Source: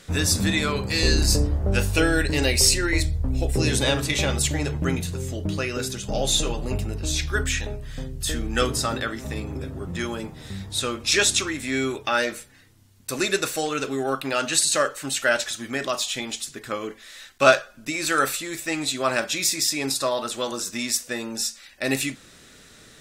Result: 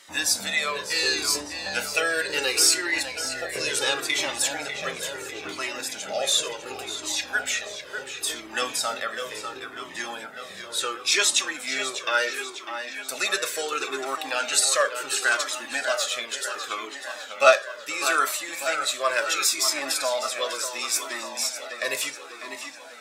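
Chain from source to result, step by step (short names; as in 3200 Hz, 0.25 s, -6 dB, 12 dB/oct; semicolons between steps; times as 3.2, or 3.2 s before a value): HPF 550 Hz 12 dB/oct; on a send: tape echo 0.598 s, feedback 73%, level -8 dB, low-pass 5100 Hz; on the sum: cascading flanger falling 0.71 Hz; gain +4 dB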